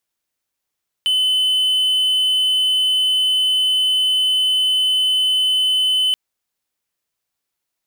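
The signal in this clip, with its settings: tone triangle 3.03 kHz -12 dBFS 5.08 s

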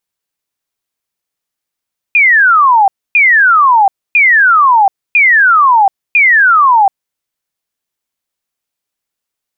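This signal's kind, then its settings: burst of laser zaps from 2.5 kHz, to 760 Hz, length 0.73 s sine, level -4 dB, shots 5, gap 0.27 s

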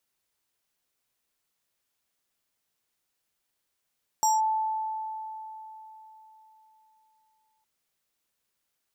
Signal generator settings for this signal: FM tone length 3.41 s, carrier 875 Hz, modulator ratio 7.5, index 0.85, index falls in 0.18 s linear, decay 3.85 s, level -19 dB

